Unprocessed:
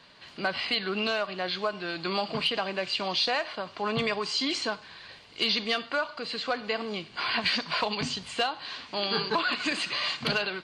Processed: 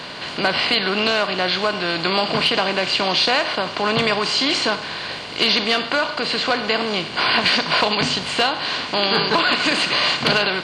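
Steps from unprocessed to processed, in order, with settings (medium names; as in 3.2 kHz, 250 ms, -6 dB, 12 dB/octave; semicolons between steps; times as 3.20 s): spectral levelling over time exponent 0.6; trim +6 dB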